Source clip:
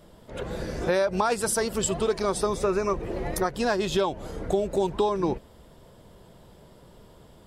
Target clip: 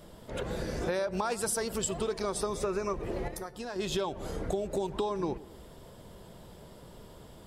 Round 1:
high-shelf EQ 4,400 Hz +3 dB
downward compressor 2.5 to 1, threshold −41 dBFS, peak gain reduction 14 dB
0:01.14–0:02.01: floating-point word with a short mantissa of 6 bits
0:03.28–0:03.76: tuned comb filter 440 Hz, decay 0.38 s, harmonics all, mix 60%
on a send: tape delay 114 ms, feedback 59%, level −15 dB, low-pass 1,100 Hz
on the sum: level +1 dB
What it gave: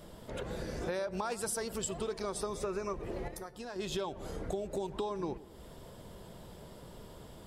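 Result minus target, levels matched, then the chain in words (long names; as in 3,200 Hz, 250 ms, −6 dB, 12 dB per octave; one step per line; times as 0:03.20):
downward compressor: peak gain reduction +4.5 dB
high-shelf EQ 4,400 Hz +3 dB
downward compressor 2.5 to 1, threshold −33.5 dBFS, peak gain reduction 9.5 dB
0:01.14–0:02.01: floating-point word with a short mantissa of 6 bits
0:03.28–0:03.76: tuned comb filter 440 Hz, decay 0.38 s, harmonics all, mix 60%
on a send: tape delay 114 ms, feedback 59%, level −15 dB, low-pass 1,100 Hz
on the sum: level +1 dB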